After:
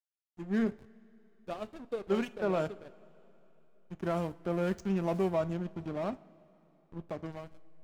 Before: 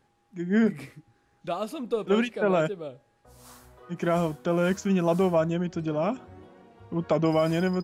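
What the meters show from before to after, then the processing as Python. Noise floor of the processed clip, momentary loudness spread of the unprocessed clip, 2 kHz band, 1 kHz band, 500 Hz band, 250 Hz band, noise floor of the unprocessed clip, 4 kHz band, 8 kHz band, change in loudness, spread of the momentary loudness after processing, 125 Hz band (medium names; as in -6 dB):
-69 dBFS, 15 LU, -10.0 dB, -9.0 dB, -8.5 dB, -8.5 dB, -68 dBFS, -11.0 dB, under -10 dB, -8.0 dB, 17 LU, -8.5 dB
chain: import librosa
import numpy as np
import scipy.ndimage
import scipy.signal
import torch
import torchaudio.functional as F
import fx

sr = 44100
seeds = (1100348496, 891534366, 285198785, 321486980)

y = fx.fade_out_tail(x, sr, length_s=1.49)
y = fx.backlash(y, sr, play_db=-27.5)
y = fx.rev_double_slope(y, sr, seeds[0], early_s=0.36, late_s=3.6, knee_db=-18, drr_db=13.5)
y = F.gain(torch.from_numpy(y), -7.0).numpy()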